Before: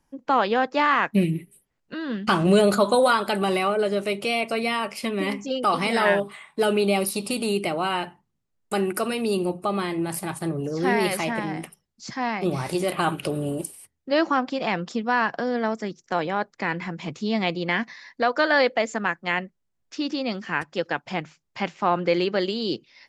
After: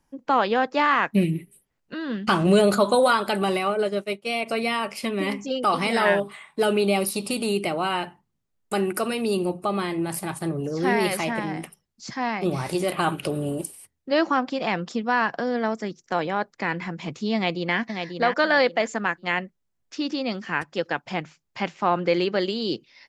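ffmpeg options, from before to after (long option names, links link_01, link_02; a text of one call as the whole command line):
ffmpeg -i in.wav -filter_complex "[0:a]asplit=3[link_01][link_02][link_03];[link_01]afade=type=out:start_time=3.5:duration=0.02[link_04];[link_02]agate=range=-33dB:threshold=-22dB:ratio=3:release=100:detection=peak,afade=type=in:start_time=3.5:duration=0.02,afade=type=out:start_time=4.45:duration=0.02[link_05];[link_03]afade=type=in:start_time=4.45:duration=0.02[link_06];[link_04][link_05][link_06]amix=inputs=3:normalize=0,asplit=2[link_07][link_08];[link_08]afade=type=in:start_time=17.35:duration=0.01,afade=type=out:start_time=17.79:duration=0.01,aecho=0:1:540|1080|1620:0.501187|0.125297|0.0313242[link_09];[link_07][link_09]amix=inputs=2:normalize=0" out.wav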